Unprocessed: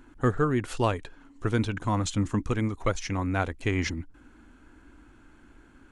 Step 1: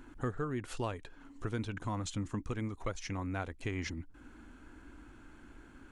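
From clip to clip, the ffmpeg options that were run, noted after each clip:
-af "acompressor=threshold=-42dB:ratio=2"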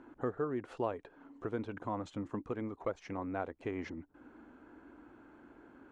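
-af "bandpass=f=550:t=q:w=0.92:csg=0,volume=4.5dB"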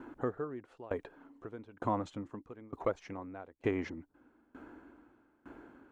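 -af "aeval=exprs='val(0)*pow(10,-24*if(lt(mod(1.1*n/s,1),2*abs(1.1)/1000),1-mod(1.1*n/s,1)/(2*abs(1.1)/1000),(mod(1.1*n/s,1)-2*abs(1.1)/1000)/(1-2*abs(1.1)/1000))/20)':c=same,volume=8dB"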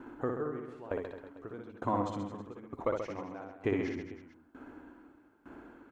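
-af "aecho=1:1:60|132|218.4|322.1|446.5:0.631|0.398|0.251|0.158|0.1"

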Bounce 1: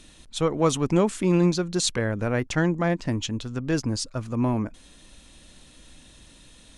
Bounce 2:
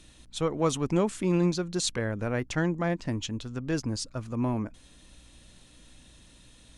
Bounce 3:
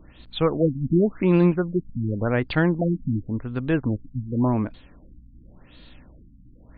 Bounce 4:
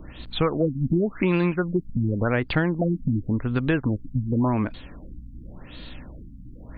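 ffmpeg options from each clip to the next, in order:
-af "aeval=exprs='val(0)+0.00178*(sin(2*PI*60*n/s)+sin(2*PI*2*60*n/s)/2+sin(2*PI*3*60*n/s)/3+sin(2*PI*4*60*n/s)/4+sin(2*PI*5*60*n/s)/5)':c=same,volume=-4.5dB"
-af "afftfilt=real='re*lt(b*sr/1024,270*pow(4800/270,0.5+0.5*sin(2*PI*0.9*pts/sr)))':imag='im*lt(b*sr/1024,270*pow(4800/270,0.5+0.5*sin(2*PI*0.9*pts/sr)))':win_size=1024:overlap=0.75,volume=7dB"
-filter_complex "[0:a]acrossover=split=1300|2700[a][b][c];[a]acompressor=threshold=-29dB:ratio=4[d];[b]acompressor=threshold=-38dB:ratio=4[e];[c]acompressor=threshold=-48dB:ratio=4[f];[d][e][f]amix=inputs=3:normalize=0,volume=8dB"

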